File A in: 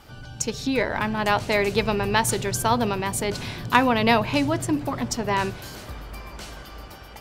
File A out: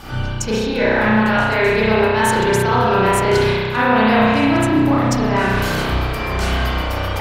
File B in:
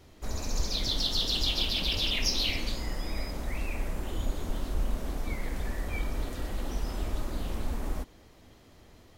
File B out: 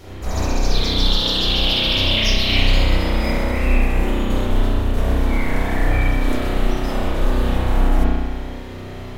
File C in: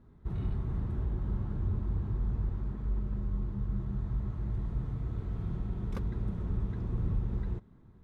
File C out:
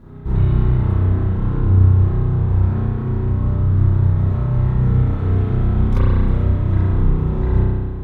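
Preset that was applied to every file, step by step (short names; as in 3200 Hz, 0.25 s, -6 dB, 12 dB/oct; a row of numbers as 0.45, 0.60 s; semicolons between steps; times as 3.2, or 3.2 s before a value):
dynamic EQ 1500 Hz, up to +7 dB, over -47 dBFS, Q 6.4; reverse; compressor 6:1, threshold -34 dBFS; reverse; spring tank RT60 1.7 s, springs 32 ms, chirp 35 ms, DRR -9 dB; normalise peaks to -3 dBFS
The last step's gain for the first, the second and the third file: +11.5, +12.5, +14.0 dB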